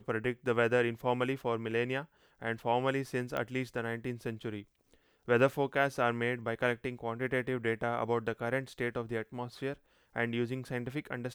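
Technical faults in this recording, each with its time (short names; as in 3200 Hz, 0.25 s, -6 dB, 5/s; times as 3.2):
3.37 pop -22 dBFS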